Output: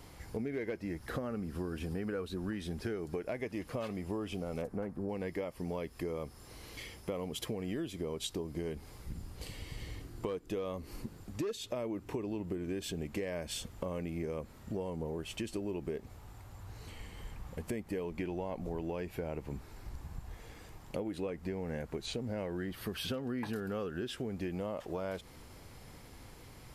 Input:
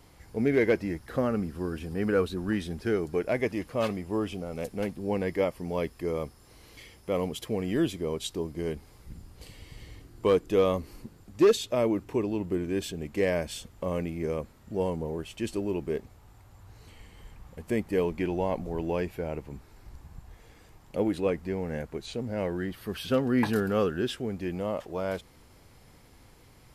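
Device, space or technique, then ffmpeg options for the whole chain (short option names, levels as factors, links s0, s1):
serial compression, peaks first: -filter_complex "[0:a]asplit=3[s0][s1][s2];[s0]afade=t=out:st=4.61:d=0.02[s3];[s1]highshelf=f=2000:t=q:w=1.5:g=-11.5,afade=t=in:st=4.61:d=0.02,afade=t=out:st=5.08:d=0.02[s4];[s2]afade=t=in:st=5.08:d=0.02[s5];[s3][s4][s5]amix=inputs=3:normalize=0,acompressor=threshold=0.0224:ratio=6,acompressor=threshold=0.01:ratio=2,volume=1.41"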